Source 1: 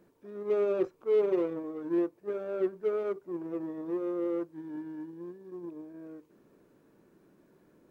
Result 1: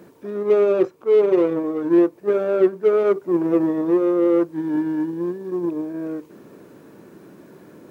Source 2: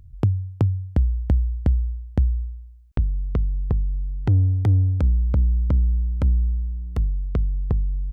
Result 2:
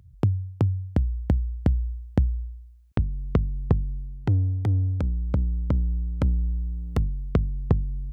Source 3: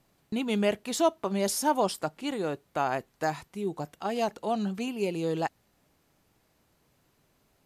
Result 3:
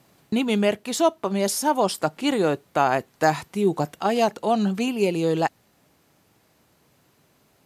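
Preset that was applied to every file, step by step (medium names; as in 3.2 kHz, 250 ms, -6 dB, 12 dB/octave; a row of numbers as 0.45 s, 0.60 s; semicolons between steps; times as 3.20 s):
high-pass 84 Hz 12 dB/octave; gain riding within 4 dB 0.5 s; peak normalisation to -6 dBFS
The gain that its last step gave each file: +14.0 dB, +0.5 dB, +7.0 dB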